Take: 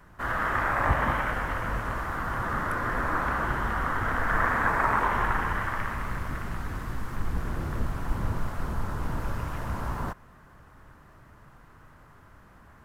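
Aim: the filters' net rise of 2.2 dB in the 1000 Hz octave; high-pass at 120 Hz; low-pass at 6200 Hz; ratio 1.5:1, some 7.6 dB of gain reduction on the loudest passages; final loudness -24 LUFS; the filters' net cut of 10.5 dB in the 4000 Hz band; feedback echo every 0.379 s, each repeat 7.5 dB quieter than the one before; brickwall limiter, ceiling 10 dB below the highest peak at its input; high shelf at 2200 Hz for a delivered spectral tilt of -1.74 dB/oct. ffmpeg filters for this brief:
-af "highpass=120,lowpass=6.2k,equalizer=f=1k:t=o:g=5,highshelf=f=2.2k:g=-8.5,equalizer=f=4k:t=o:g=-7,acompressor=threshold=-41dB:ratio=1.5,alimiter=level_in=3dB:limit=-24dB:level=0:latency=1,volume=-3dB,aecho=1:1:379|758|1137|1516|1895:0.422|0.177|0.0744|0.0312|0.0131,volume=12.5dB"

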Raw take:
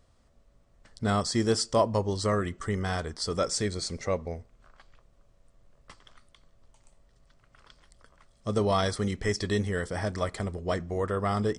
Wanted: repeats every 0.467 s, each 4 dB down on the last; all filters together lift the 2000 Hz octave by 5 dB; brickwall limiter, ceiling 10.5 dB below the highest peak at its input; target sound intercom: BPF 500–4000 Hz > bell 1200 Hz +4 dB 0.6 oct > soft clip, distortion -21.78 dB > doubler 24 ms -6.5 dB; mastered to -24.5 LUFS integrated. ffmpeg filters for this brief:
-filter_complex "[0:a]equalizer=f=2k:t=o:g=5,alimiter=limit=-21dB:level=0:latency=1,highpass=500,lowpass=4k,equalizer=f=1.2k:t=o:w=0.6:g=4,aecho=1:1:467|934|1401|1868|2335|2802|3269|3736|4203:0.631|0.398|0.25|0.158|0.0994|0.0626|0.0394|0.0249|0.0157,asoftclip=threshold=-21dB,asplit=2[a][b];[b]adelay=24,volume=-6.5dB[c];[a][c]amix=inputs=2:normalize=0,volume=9dB"

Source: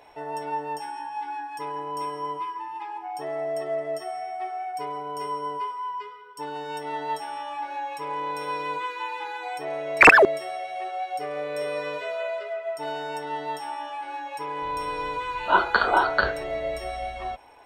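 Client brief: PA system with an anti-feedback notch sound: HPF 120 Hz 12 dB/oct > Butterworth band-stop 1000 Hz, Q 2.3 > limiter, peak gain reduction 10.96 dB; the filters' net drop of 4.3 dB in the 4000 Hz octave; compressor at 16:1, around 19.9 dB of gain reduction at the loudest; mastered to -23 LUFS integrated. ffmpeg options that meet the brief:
-af "equalizer=f=4k:t=o:g=-6,acompressor=threshold=-29dB:ratio=16,highpass=120,asuperstop=centerf=1000:order=8:qfactor=2.3,volume=15dB,alimiter=limit=-14dB:level=0:latency=1"

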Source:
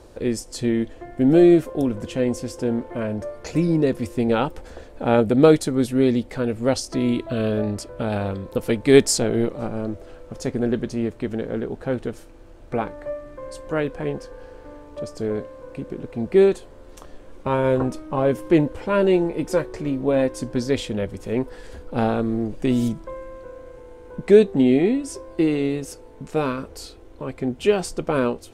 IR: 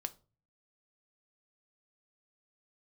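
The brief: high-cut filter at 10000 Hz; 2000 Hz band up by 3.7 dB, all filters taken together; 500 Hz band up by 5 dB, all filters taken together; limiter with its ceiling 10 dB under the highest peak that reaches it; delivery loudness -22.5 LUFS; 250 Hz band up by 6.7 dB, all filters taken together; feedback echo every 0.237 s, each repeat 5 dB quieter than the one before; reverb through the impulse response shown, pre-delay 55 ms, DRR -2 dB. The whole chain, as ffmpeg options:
-filter_complex "[0:a]lowpass=10k,equalizer=f=250:t=o:g=7,equalizer=f=500:t=o:g=3.5,equalizer=f=2k:t=o:g=4.5,alimiter=limit=-5.5dB:level=0:latency=1,aecho=1:1:237|474|711|948|1185|1422|1659:0.562|0.315|0.176|0.0988|0.0553|0.031|0.0173,asplit=2[a][b];[1:a]atrim=start_sample=2205,adelay=55[c];[b][c]afir=irnorm=-1:irlink=0,volume=3.5dB[d];[a][d]amix=inputs=2:normalize=0,volume=-9.5dB"

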